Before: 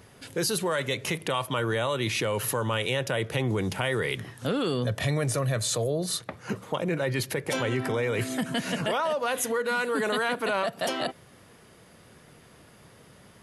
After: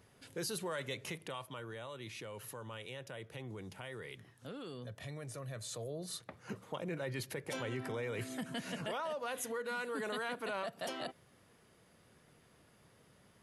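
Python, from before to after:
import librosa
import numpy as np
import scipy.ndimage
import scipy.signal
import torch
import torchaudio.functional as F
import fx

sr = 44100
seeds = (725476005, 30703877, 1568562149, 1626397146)

y = fx.gain(x, sr, db=fx.line((0.98, -12.0), (1.67, -19.0), (5.24, -19.0), (6.38, -12.0)))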